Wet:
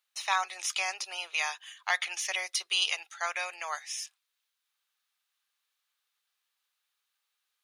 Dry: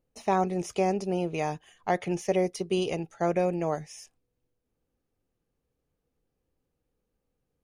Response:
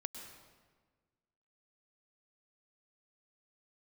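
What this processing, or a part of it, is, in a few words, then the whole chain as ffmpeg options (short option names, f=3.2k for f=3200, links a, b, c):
headphones lying on a table: -af "highpass=f=1.2k:w=0.5412,highpass=f=1.2k:w=1.3066,equalizer=f=3.7k:t=o:w=0.56:g=8,volume=8dB"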